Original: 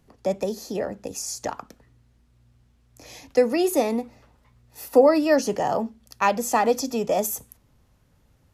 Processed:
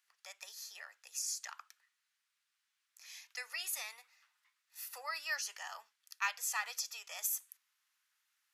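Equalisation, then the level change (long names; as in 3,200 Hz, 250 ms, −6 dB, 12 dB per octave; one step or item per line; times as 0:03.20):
high-pass filter 1,400 Hz 24 dB per octave
−6.5 dB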